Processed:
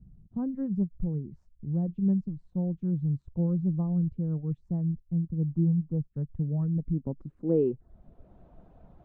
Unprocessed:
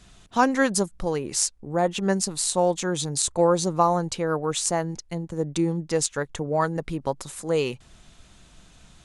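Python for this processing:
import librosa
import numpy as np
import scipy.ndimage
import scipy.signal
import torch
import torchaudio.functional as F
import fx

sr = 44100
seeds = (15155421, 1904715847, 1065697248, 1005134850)

y = fx.high_shelf_res(x, sr, hz=1800.0, db=-14.0, q=1.5, at=(5.41, 6.11))
y = fx.filter_sweep_lowpass(y, sr, from_hz=160.0, to_hz=660.0, start_s=6.69, end_s=8.45, q=1.9)
y = fx.dereverb_blind(y, sr, rt60_s=0.51)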